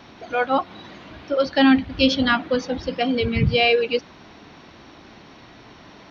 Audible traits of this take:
background noise floor −47 dBFS
spectral slope −3.5 dB per octave

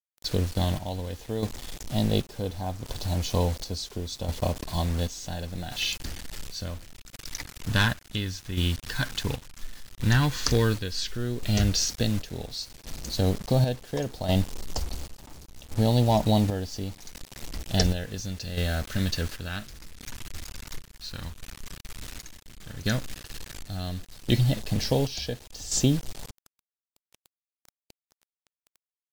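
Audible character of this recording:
phaser sweep stages 2, 0.083 Hz, lowest notch 670–1,500 Hz
a quantiser's noise floor 8 bits, dither none
chopped level 0.7 Hz, depth 60%, duty 55%
MP3

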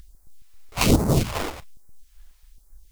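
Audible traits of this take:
aliases and images of a low sample rate 1,700 Hz, jitter 20%
chopped level 3.7 Hz, depth 60%, duty 55%
a quantiser's noise floor 12 bits, dither triangular
phaser sweep stages 2, 1.2 Hz, lowest notch 120–2,900 Hz

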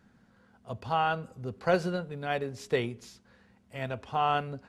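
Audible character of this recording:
background noise floor −64 dBFS
spectral slope −4.0 dB per octave

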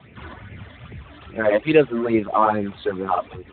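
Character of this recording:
a quantiser's noise floor 8 bits, dither none
phaser sweep stages 12, 2.4 Hz, lowest notch 130–1,200 Hz
Speex

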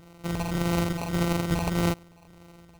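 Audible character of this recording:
a buzz of ramps at a fixed pitch in blocks of 256 samples
phaser sweep stages 4, 1.7 Hz, lowest notch 380–4,200 Hz
aliases and images of a low sample rate 1,700 Hz, jitter 0%

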